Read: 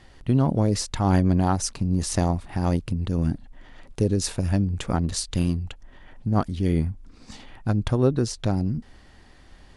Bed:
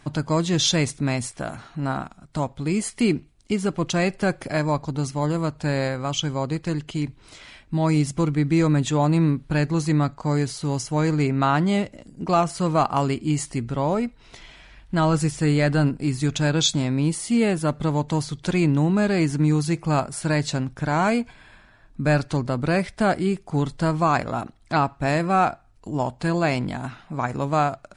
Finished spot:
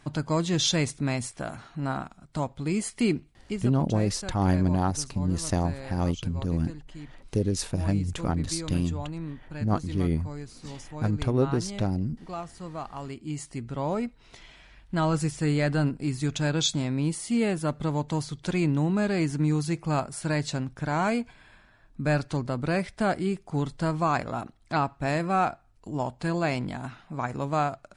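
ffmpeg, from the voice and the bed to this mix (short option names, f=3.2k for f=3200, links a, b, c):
-filter_complex "[0:a]adelay=3350,volume=-3.5dB[a];[1:a]volume=7.5dB,afade=t=out:st=3.27:d=0.52:silence=0.237137,afade=t=in:st=12.97:d=1.08:silence=0.266073[b];[a][b]amix=inputs=2:normalize=0"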